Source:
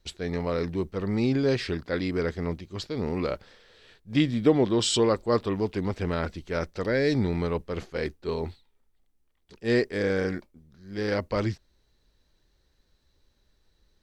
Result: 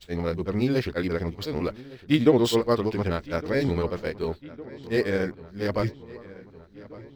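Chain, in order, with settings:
running median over 5 samples
time stretch by overlap-add 0.51×, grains 143 ms
feedback echo with a low-pass in the loop 1,159 ms, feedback 71%, low-pass 3,700 Hz, level −19.5 dB
level +2.5 dB

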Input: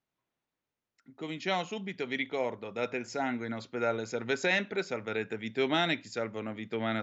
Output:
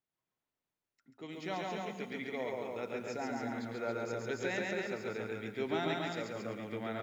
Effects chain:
dynamic equaliser 3,100 Hz, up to −7 dB, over −45 dBFS, Q 0.94
loudspeakers that aren't time-aligned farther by 47 metres −2 dB, 95 metres −4 dB
feedback echo at a low word length 112 ms, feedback 55%, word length 9 bits, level −10 dB
level −7.5 dB

